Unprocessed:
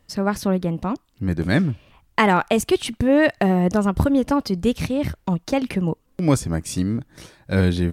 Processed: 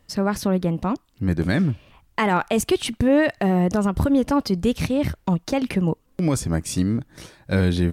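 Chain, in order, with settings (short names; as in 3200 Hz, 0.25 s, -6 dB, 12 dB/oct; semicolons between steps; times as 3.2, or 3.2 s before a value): limiter -11 dBFS, peak gain reduction 7.5 dB; gain +1 dB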